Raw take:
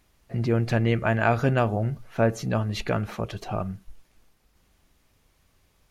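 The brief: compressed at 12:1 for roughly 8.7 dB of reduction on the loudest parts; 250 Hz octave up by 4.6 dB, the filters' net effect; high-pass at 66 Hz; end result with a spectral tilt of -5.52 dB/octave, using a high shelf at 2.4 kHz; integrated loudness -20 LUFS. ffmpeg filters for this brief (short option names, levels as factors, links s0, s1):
-af "highpass=66,equalizer=f=250:t=o:g=5.5,highshelf=f=2400:g=7,acompressor=threshold=0.0708:ratio=12,volume=2.99"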